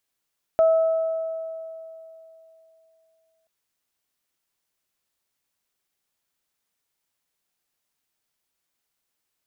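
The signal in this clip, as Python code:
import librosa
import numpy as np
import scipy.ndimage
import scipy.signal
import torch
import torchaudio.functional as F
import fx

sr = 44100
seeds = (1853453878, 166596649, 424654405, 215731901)

y = fx.additive(sr, length_s=2.88, hz=649.0, level_db=-13, upper_db=(-18.0,), decay_s=3.09, upper_decays_s=(2.01,))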